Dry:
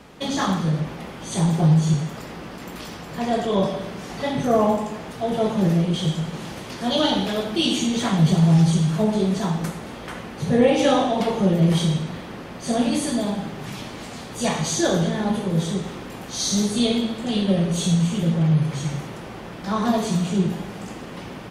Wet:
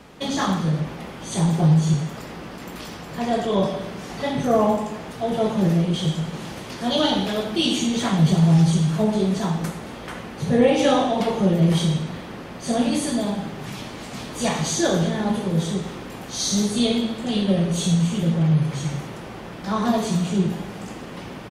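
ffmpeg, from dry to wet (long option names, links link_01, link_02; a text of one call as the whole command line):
ffmpeg -i in.wav -filter_complex "[0:a]asplit=2[link_01][link_02];[link_02]afade=type=in:start_time=13.71:duration=0.01,afade=type=out:start_time=14.26:duration=0.01,aecho=0:1:420|840|1260|1680|2100|2520|2940|3360|3780:0.630957|0.378574|0.227145|0.136287|0.0817721|0.0490632|0.0294379|0.0176628|0.0105977[link_03];[link_01][link_03]amix=inputs=2:normalize=0" out.wav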